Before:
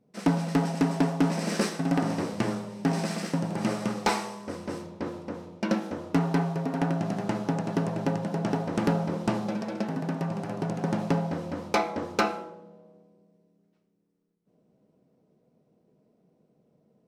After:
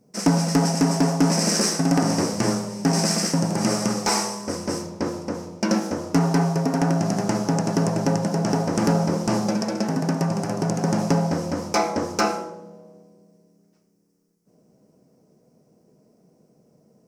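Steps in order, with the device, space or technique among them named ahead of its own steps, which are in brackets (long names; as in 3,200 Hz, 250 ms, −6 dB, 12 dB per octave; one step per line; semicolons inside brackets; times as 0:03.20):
over-bright horn tweeter (high shelf with overshoot 4,500 Hz +6.5 dB, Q 3; brickwall limiter −18 dBFS, peak gain reduction 10 dB)
level +7.5 dB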